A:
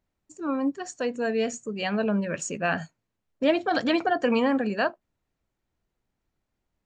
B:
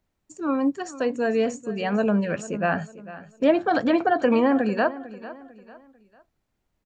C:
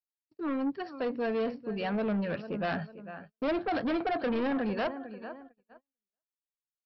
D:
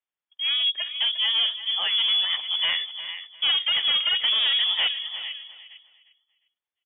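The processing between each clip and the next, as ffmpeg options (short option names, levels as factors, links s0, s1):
-filter_complex "[0:a]acrossover=split=520|1800[s0][s1][s2];[s2]acompressor=threshold=0.00708:ratio=6[s3];[s0][s1][s3]amix=inputs=3:normalize=0,aecho=1:1:448|896|1344:0.15|0.0554|0.0205,volume=1.5"
-af "agate=range=0.01:threshold=0.00708:ratio=16:detection=peak,aresample=11025,asoftclip=type=tanh:threshold=0.0794,aresample=44100,volume=0.631"
-af "lowpass=f=3100:t=q:w=0.5098,lowpass=f=3100:t=q:w=0.6013,lowpass=f=3100:t=q:w=0.9,lowpass=f=3100:t=q:w=2.563,afreqshift=-3600,aecho=1:1:353|706|1059:0.211|0.0507|0.0122,volume=2.24"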